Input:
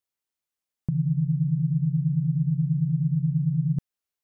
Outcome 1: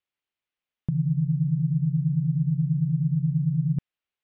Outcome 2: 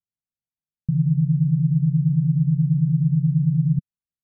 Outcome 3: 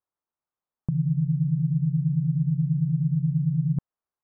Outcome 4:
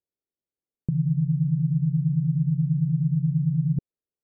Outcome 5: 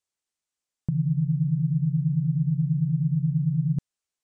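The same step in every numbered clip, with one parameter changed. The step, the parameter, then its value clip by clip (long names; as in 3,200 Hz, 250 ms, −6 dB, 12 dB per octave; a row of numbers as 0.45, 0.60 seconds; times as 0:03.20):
low-pass with resonance, frequency: 2,900, 170, 1,100, 440, 7,900 Hertz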